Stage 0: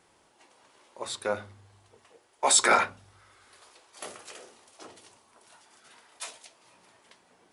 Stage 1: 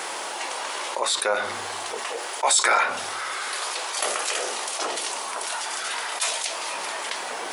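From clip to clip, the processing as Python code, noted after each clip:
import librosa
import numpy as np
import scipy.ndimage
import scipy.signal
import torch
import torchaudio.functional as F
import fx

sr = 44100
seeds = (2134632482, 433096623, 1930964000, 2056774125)

y = scipy.signal.sosfilt(scipy.signal.butter(2, 560.0, 'highpass', fs=sr, output='sos'), x)
y = fx.env_flatten(y, sr, amount_pct=70)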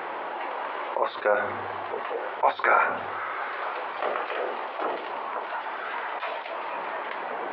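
y = scipy.ndimage.gaussian_filter1d(x, 4.0, mode='constant')
y = y + 10.0 ** (-17.0 / 20.0) * np.pad(y, (int(948 * sr / 1000.0), 0))[:len(y)]
y = F.gain(torch.from_numpy(y), 2.0).numpy()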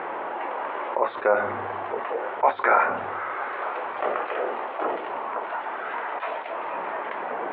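y = fx.air_absorb(x, sr, metres=450.0)
y = F.gain(torch.from_numpy(y), 4.0).numpy()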